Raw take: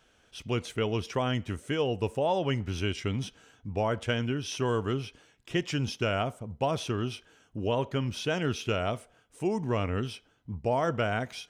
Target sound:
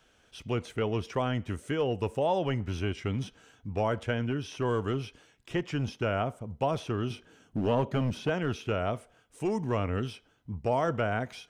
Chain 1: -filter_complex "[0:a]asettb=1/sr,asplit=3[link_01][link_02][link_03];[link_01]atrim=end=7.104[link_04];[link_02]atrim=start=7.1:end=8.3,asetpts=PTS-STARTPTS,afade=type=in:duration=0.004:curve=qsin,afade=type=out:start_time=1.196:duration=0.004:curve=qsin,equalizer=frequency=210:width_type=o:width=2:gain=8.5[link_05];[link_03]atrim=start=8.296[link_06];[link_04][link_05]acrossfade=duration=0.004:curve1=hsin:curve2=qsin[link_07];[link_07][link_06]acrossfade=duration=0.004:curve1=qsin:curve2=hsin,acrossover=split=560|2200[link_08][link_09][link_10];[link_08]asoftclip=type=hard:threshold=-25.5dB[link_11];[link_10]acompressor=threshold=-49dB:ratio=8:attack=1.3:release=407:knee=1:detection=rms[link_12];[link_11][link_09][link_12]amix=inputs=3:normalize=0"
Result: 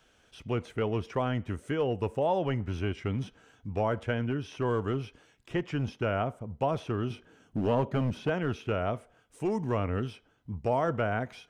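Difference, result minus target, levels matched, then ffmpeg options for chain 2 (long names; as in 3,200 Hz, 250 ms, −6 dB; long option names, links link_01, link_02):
downward compressor: peak gain reduction +6.5 dB
-filter_complex "[0:a]asettb=1/sr,asplit=3[link_01][link_02][link_03];[link_01]atrim=end=7.104[link_04];[link_02]atrim=start=7.1:end=8.3,asetpts=PTS-STARTPTS,afade=type=in:duration=0.004:curve=qsin,afade=type=out:start_time=1.196:duration=0.004:curve=qsin,equalizer=frequency=210:width_type=o:width=2:gain=8.5[link_05];[link_03]atrim=start=8.296[link_06];[link_04][link_05]acrossfade=duration=0.004:curve1=hsin:curve2=qsin[link_07];[link_07][link_06]acrossfade=duration=0.004:curve1=qsin:curve2=hsin,acrossover=split=560|2200[link_08][link_09][link_10];[link_08]asoftclip=type=hard:threshold=-25.5dB[link_11];[link_10]acompressor=threshold=-41.5dB:ratio=8:attack=1.3:release=407:knee=1:detection=rms[link_12];[link_11][link_09][link_12]amix=inputs=3:normalize=0"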